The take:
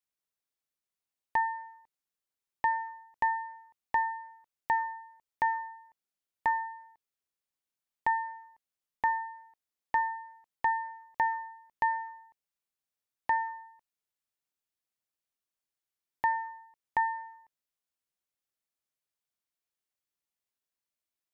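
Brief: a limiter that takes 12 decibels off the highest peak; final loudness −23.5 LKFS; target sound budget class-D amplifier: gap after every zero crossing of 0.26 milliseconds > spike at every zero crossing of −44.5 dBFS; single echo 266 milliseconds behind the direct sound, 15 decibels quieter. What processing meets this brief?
brickwall limiter −30.5 dBFS
single-tap delay 266 ms −15 dB
gap after every zero crossing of 0.26 ms
spike at every zero crossing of −44.5 dBFS
level +17.5 dB

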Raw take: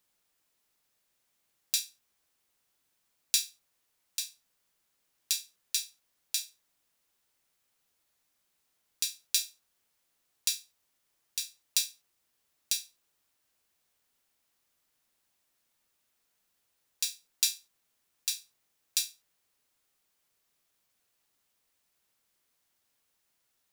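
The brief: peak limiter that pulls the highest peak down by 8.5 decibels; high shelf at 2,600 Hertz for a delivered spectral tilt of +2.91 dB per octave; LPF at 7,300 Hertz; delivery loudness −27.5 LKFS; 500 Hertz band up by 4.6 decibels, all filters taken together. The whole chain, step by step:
low-pass filter 7,300 Hz
parametric band 500 Hz +6 dB
high-shelf EQ 2,600 Hz −8 dB
level +16.5 dB
brickwall limiter −6 dBFS

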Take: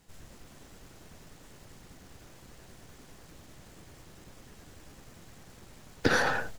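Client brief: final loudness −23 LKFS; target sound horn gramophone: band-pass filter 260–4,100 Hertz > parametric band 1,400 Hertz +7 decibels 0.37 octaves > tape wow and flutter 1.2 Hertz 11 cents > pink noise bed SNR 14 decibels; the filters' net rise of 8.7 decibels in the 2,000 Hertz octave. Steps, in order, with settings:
band-pass filter 260–4,100 Hz
parametric band 1,400 Hz +7 dB 0.37 octaves
parametric band 2,000 Hz +7 dB
tape wow and flutter 1.2 Hz 11 cents
pink noise bed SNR 14 dB
level −1.5 dB

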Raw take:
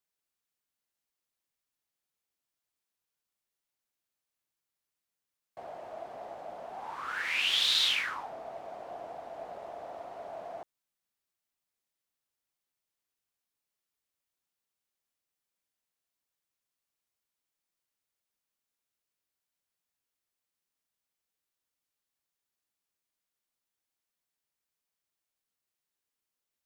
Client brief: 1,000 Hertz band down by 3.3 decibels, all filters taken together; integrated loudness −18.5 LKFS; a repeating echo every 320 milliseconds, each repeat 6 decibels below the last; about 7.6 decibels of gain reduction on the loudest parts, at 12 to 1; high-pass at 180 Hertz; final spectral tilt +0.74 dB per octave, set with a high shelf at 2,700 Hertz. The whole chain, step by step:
high-pass filter 180 Hz
parametric band 1,000 Hz −5.5 dB
high-shelf EQ 2,700 Hz +4 dB
downward compressor 12 to 1, threshold −28 dBFS
repeating echo 320 ms, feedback 50%, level −6 dB
level +17 dB

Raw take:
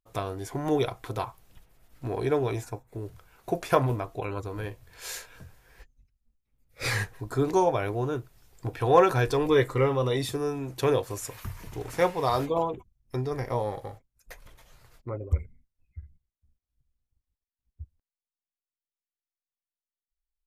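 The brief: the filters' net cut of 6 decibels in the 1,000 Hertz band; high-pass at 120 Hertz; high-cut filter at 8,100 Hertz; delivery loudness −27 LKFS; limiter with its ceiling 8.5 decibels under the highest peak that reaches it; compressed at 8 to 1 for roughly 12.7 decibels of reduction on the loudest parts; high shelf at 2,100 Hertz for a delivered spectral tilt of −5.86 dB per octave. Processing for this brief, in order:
high-pass filter 120 Hz
low-pass filter 8,100 Hz
parametric band 1,000 Hz −7 dB
high-shelf EQ 2,100 Hz −4.5 dB
downward compressor 8 to 1, threshold −30 dBFS
level +12 dB
brickwall limiter −15 dBFS

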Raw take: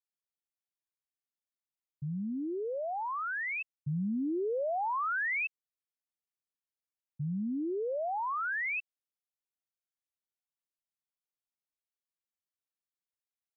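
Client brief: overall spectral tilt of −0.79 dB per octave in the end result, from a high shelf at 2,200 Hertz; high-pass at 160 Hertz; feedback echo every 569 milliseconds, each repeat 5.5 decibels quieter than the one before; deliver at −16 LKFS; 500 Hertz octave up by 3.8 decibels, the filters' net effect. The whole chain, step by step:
high-pass filter 160 Hz
parametric band 500 Hz +4.5 dB
high-shelf EQ 2,200 Hz +4 dB
repeating echo 569 ms, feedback 53%, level −5.5 dB
level +16 dB

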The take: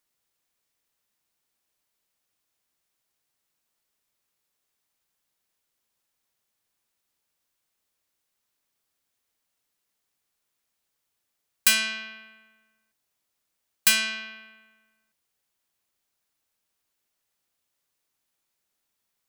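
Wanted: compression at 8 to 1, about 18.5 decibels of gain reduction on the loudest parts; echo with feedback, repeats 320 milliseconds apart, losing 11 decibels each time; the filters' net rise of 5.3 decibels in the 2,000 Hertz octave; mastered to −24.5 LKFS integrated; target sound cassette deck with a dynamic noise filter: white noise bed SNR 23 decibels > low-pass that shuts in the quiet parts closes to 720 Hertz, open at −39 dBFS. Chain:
parametric band 2,000 Hz +7 dB
downward compressor 8 to 1, threshold −32 dBFS
repeating echo 320 ms, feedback 28%, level −11 dB
white noise bed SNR 23 dB
low-pass that shuts in the quiet parts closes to 720 Hz, open at −39 dBFS
level +12.5 dB

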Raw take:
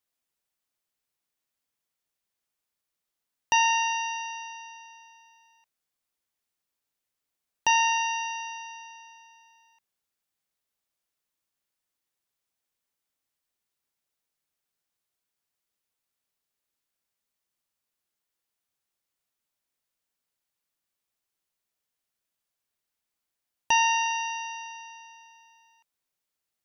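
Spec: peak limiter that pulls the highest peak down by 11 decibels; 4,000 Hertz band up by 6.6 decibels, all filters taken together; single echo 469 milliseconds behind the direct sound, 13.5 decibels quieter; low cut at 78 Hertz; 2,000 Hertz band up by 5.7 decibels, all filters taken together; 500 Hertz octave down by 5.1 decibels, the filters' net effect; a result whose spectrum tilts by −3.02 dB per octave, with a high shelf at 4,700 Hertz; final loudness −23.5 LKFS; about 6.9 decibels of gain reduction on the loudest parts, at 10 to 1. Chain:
high-pass filter 78 Hz
parametric band 500 Hz −7.5 dB
parametric band 2,000 Hz +3.5 dB
parametric band 4,000 Hz +5.5 dB
high-shelf EQ 4,700 Hz +7 dB
downward compressor 10 to 1, threshold −21 dBFS
brickwall limiter −20 dBFS
single-tap delay 469 ms −13.5 dB
level +6 dB

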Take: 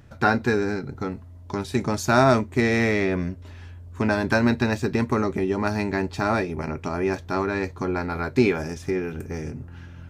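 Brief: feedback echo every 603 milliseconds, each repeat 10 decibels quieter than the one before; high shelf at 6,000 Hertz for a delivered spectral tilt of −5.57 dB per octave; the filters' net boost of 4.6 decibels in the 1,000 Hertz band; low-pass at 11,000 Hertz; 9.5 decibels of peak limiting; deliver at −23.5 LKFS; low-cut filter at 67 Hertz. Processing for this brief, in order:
high-pass filter 67 Hz
low-pass filter 11,000 Hz
parametric band 1,000 Hz +6.5 dB
high-shelf EQ 6,000 Hz −3.5 dB
brickwall limiter −10.5 dBFS
repeating echo 603 ms, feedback 32%, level −10 dB
level +1 dB

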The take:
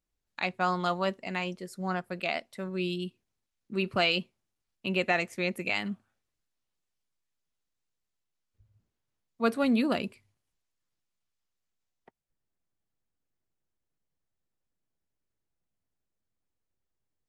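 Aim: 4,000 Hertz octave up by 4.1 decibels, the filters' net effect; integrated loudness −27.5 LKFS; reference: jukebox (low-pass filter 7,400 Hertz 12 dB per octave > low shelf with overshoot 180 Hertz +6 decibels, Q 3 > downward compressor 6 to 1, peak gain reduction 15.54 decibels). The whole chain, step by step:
low-pass filter 7,400 Hz 12 dB per octave
low shelf with overshoot 180 Hz +6 dB, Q 3
parametric band 4,000 Hz +6 dB
downward compressor 6 to 1, threshold −36 dBFS
level +12.5 dB

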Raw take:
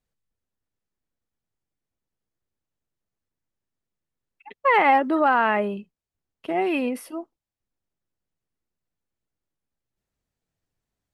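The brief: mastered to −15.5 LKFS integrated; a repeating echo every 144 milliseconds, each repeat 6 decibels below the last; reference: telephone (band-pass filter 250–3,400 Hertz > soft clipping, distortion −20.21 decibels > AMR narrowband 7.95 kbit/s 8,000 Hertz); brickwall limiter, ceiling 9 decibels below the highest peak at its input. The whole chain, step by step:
brickwall limiter −17.5 dBFS
band-pass filter 250–3,400 Hz
repeating echo 144 ms, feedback 50%, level −6 dB
soft clipping −17.5 dBFS
level +13.5 dB
AMR narrowband 7.95 kbit/s 8,000 Hz

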